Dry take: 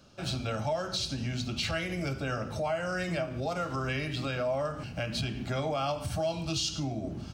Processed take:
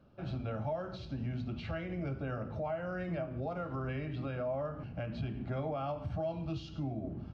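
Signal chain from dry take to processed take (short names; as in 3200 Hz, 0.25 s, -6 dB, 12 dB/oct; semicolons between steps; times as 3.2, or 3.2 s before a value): tape spacing loss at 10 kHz 45 dB; gain -2.5 dB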